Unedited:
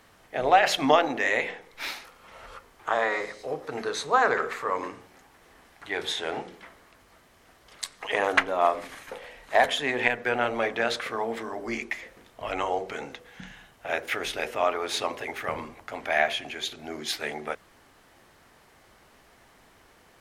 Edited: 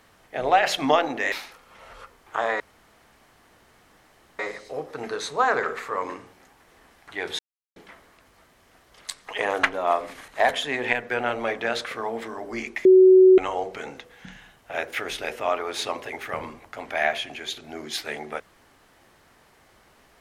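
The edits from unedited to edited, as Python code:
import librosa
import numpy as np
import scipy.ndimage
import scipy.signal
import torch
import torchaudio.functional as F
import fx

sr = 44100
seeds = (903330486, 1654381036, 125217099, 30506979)

y = fx.edit(x, sr, fx.cut(start_s=1.32, length_s=0.53),
    fx.insert_room_tone(at_s=3.13, length_s=1.79),
    fx.silence(start_s=6.13, length_s=0.37),
    fx.cut(start_s=9.02, length_s=0.41),
    fx.bleep(start_s=12.0, length_s=0.53, hz=374.0, db=-9.0), tone=tone)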